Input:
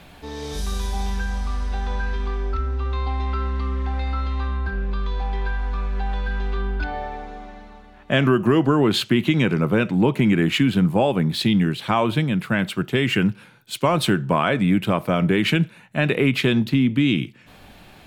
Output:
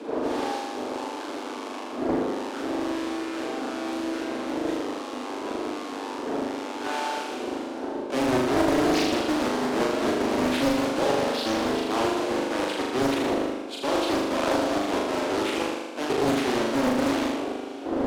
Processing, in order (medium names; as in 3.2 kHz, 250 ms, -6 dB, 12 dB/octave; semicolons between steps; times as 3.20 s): square wave that keeps the level; wind noise 380 Hz -25 dBFS; low-pass 9.5 kHz 12 dB/octave; treble shelf 6.5 kHz -5.5 dB; band-stop 1.9 kHz, Q 5.8; reverse; compression 6:1, threshold -23 dBFS, peak gain reduction 18 dB; reverse; steep high-pass 250 Hz 72 dB/octave; bass shelf 430 Hz +6 dB; on a send: flutter echo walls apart 6.8 m, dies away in 1.3 s; on the sum: loudspeaker Doppler distortion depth 0.84 ms; trim -3 dB